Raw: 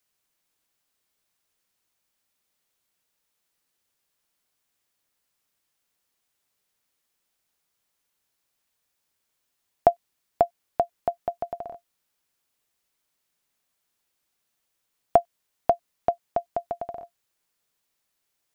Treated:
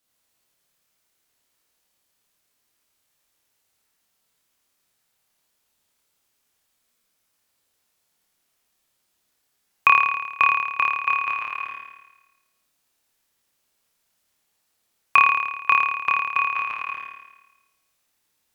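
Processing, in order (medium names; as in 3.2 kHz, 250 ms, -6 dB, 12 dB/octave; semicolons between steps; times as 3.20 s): flutter echo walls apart 4.7 m, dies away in 1.1 s; ring modulator 1.8 kHz; trim +3 dB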